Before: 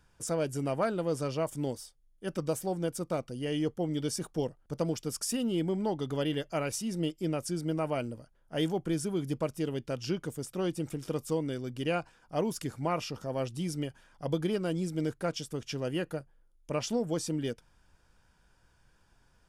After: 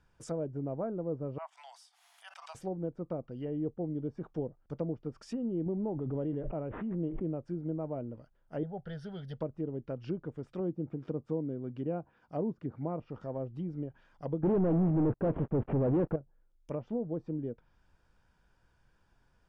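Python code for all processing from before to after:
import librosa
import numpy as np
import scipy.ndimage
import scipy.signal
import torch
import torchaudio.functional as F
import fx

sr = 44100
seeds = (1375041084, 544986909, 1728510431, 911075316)

y = fx.chain(x, sr, fx.cheby_ripple_highpass(hz=680.0, ripple_db=3),
    fx.pre_swell(db_per_s=54.0), at=(1.38, 2.55))
y = fx.chain(y, sr, fx.block_float(bits=7),
    fx.resample_bad(factor=6, down='none', up='filtered'),
    fx.pre_swell(db_per_s=27.0), at=(5.66, 7.38))
y = fx.chain(y, sr, fx.high_shelf(hz=2000.0, db=8.0),
    fx.fixed_phaser(hz=1600.0, stages=8), at=(8.63, 9.41))
y = fx.chain(y, sr, fx.highpass(hz=56.0, slope=12),
    fx.peak_eq(hz=230.0, db=2.5, octaves=1.1), at=(10.6, 13.0))
y = fx.chain(y, sr, fx.cvsd(bps=16000),
    fx.leveller(passes=5), at=(14.43, 16.16))
y = fx.lowpass(y, sr, hz=3000.0, slope=6)
y = fx.env_lowpass_down(y, sr, base_hz=620.0, full_db=-29.0)
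y = y * librosa.db_to_amplitude(-3.0)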